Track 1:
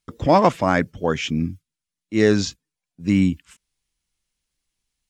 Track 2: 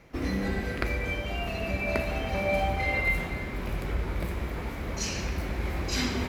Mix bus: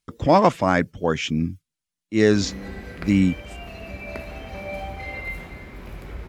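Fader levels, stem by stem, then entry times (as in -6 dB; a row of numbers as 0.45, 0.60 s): -0.5, -5.5 dB; 0.00, 2.20 s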